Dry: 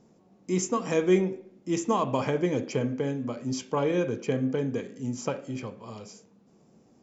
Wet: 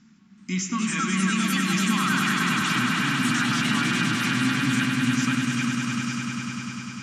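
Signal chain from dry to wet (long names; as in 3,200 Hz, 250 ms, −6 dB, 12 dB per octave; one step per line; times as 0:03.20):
Bessel low-pass filter 4,100 Hz, order 2
delay with pitch and tempo change per echo 377 ms, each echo +3 semitones, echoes 3
drawn EQ curve 130 Hz 0 dB, 230 Hz +9 dB, 510 Hz −28 dB, 1,400 Hz +13 dB
brickwall limiter −18.5 dBFS, peak gain reduction 11.5 dB
on a send: echo that builds up and dies away 100 ms, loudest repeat 5, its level −7 dB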